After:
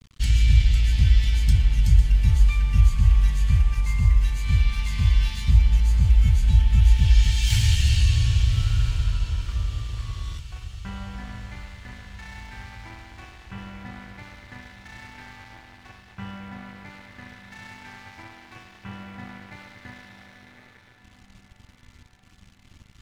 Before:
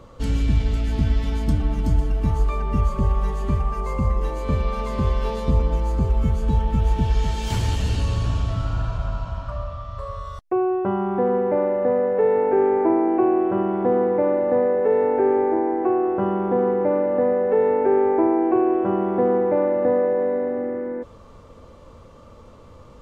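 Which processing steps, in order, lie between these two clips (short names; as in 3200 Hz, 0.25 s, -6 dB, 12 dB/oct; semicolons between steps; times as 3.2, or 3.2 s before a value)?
Chebyshev band-stop 100–2000 Hz, order 2; bell 1200 Hz -10 dB 0.75 oct; crossover distortion -48.5 dBFS; low shelf 410 Hz -4 dB; diffused feedback echo 1.143 s, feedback 57%, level -14.5 dB; gain +8 dB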